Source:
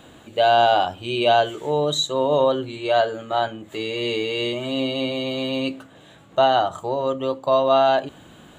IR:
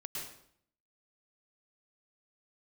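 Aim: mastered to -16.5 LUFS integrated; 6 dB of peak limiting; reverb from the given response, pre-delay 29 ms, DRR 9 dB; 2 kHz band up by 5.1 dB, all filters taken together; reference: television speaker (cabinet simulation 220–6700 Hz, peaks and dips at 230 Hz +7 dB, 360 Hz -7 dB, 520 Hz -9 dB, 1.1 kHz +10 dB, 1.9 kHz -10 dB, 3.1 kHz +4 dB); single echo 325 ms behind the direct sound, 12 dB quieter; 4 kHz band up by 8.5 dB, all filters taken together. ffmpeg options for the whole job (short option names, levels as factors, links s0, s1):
-filter_complex "[0:a]equalizer=f=2000:t=o:g=7,equalizer=f=4000:t=o:g=6,alimiter=limit=0.335:level=0:latency=1,aecho=1:1:325:0.251,asplit=2[s0][s1];[1:a]atrim=start_sample=2205,adelay=29[s2];[s1][s2]afir=irnorm=-1:irlink=0,volume=0.376[s3];[s0][s3]amix=inputs=2:normalize=0,highpass=f=220:w=0.5412,highpass=f=220:w=1.3066,equalizer=f=230:t=q:w=4:g=7,equalizer=f=360:t=q:w=4:g=-7,equalizer=f=520:t=q:w=4:g=-9,equalizer=f=1100:t=q:w=4:g=10,equalizer=f=1900:t=q:w=4:g=-10,equalizer=f=3100:t=q:w=4:g=4,lowpass=f=6700:w=0.5412,lowpass=f=6700:w=1.3066,volume=1.5"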